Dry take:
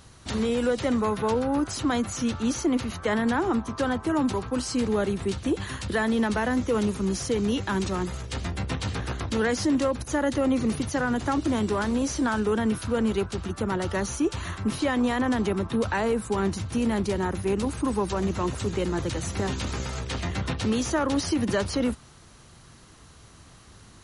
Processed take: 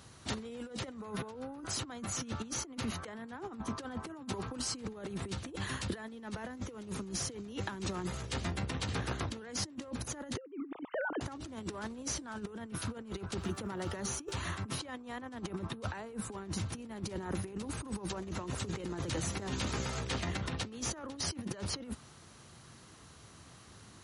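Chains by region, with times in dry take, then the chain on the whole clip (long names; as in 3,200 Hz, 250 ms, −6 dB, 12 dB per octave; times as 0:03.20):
0:10.37–0:11.21: three sine waves on the formant tracks + low-pass filter 1,400 Hz 6 dB per octave
0:13.39–0:14.33: high-pass filter 55 Hz + hum removal 391.6 Hz, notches 21 + surface crackle 360 per second −49 dBFS
whole clip: high-pass filter 81 Hz; compressor whose output falls as the input rises −30 dBFS, ratio −0.5; level −8 dB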